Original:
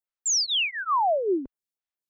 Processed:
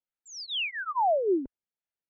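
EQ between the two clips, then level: Butterworth band-stop 1100 Hz, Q 4.7; air absorption 330 m; 0.0 dB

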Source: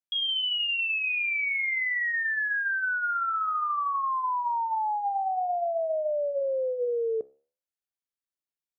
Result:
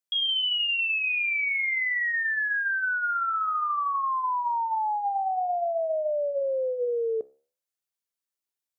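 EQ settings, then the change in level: tone controls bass -4 dB, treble +4 dB; +1.0 dB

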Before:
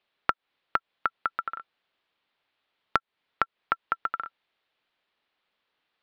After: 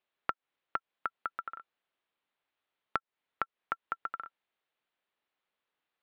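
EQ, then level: low shelf 130 Hz -3.5 dB; high shelf 4100 Hz -9.5 dB; -7.0 dB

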